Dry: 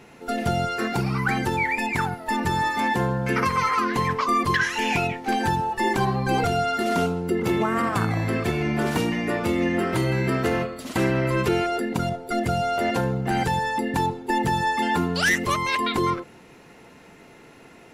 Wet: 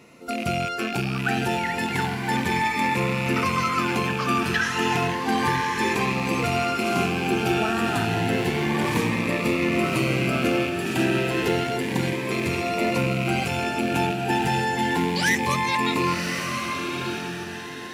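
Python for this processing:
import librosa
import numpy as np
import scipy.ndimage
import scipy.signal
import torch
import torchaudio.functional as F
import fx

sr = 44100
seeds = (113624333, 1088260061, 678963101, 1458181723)

p1 = fx.rattle_buzz(x, sr, strikes_db=-36.0, level_db=-18.0)
p2 = fx.highpass(p1, sr, hz=130.0, slope=6)
p3 = p2 + fx.echo_diffused(p2, sr, ms=1089, feedback_pct=40, wet_db=-3.0, dry=0)
y = fx.notch_cascade(p3, sr, direction='rising', hz=0.31)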